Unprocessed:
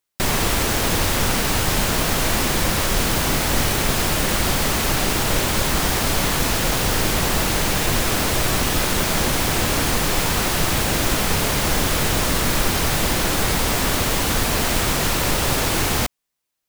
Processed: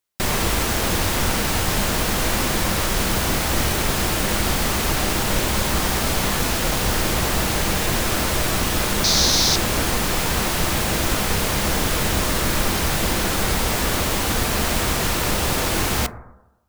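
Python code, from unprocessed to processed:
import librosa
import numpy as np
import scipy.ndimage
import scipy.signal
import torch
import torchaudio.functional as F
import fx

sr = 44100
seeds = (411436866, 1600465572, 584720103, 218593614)

y = fx.band_shelf(x, sr, hz=4800.0, db=13.0, octaves=1.0, at=(9.04, 9.56))
y = fx.rev_fdn(y, sr, rt60_s=0.98, lf_ratio=0.95, hf_ratio=0.25, size_ms=88.0, drr_db=9.5)
y = y * librosa.db_to_amplitude(-1.5)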